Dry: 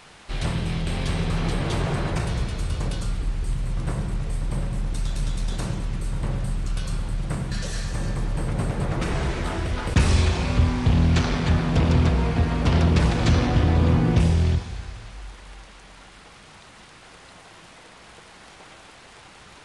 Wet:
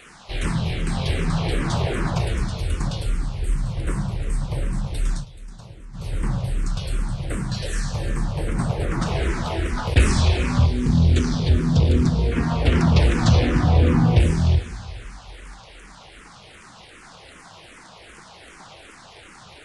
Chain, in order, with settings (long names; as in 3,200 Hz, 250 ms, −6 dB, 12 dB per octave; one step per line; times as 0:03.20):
0:05.14–0:06.05: duck −16 dB, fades 0.12 s
0:10.66–0:12.32: flat-topped bell 1,300 Hz −8 dB 2.5 octaves
frequency shifter mixed with the dry sound −2.6 Hz
level +5 dB